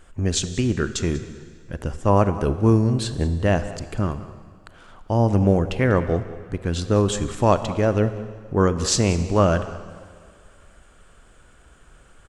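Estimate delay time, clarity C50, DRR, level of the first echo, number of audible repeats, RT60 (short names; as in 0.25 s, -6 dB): 0.192 s, 11.5 dB, 11.0 dB, -17.5 dB, 1, 2.1 s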